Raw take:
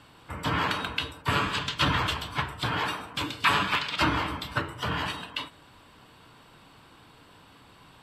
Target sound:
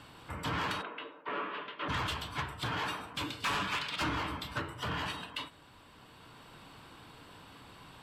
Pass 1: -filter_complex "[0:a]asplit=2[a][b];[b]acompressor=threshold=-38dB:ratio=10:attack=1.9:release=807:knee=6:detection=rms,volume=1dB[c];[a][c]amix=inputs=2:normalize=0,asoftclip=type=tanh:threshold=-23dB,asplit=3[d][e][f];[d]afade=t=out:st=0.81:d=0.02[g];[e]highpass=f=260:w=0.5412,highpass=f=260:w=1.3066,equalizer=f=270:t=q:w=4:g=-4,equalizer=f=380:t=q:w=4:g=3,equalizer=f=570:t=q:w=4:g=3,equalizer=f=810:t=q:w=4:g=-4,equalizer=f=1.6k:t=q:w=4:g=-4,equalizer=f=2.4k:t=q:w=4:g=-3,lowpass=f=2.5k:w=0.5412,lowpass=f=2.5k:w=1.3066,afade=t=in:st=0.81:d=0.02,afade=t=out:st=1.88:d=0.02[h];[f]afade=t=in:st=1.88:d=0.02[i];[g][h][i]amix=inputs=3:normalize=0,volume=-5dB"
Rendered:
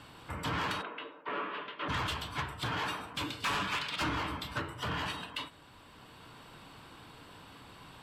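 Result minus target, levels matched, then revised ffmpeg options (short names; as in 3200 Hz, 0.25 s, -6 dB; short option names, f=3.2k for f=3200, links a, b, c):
compressor: peak gain reduction -6.5 dB
-filter_complex "[0:a]asplit=2[a][b];[b]acompressor=threshold=-45dB:ratio=10:attack=1.9:release=807:knee=6:detection=rms,volume=1dB[c];[a][c]amix=inputs=2:normalize=0,asoftclip=type=tanh:threshold=-23dB,asplit=3[d][e][f];[d]afade=t=out:st=0.81:d=0.02[g];[e]highpass=f=260:w=0.5412,highpass=f=260:w=1.3066,equalizer=f=270:t=q:w=4:g=-4,equalizer=f=380:t=q:w=4:g=3,equalizer=f=570:t=q:w=4:g=3,equalizer=f=810:t=q:w=4:g=-4,equalizer=f=1.6k:t=q:w=4:g=-4,equalizer=f=2.4k:t=q:w=4:g=-3,lowpass=f=2.5k:w=0.5412,lowpass=f=2.5k:w=1.3066,afade=t=in:st=0.81:d=0.02,afade=t=out:st=1.88:d=0.02[h];[f]afade=t=in:st=1.88:d=0.02[i];[g][h][i]amix=inputs=3:normalize=0,volume=-5dB"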